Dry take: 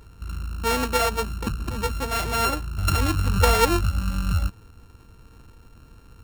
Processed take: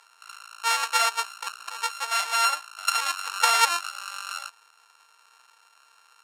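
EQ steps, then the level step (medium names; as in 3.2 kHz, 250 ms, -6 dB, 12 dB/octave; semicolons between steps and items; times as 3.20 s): high-pass 840 Hz 24 dB/octave; low-pass 8.6 kHz 12 dB/octave; treble shelf 6.5 kHz +7 dB; +1.5 dB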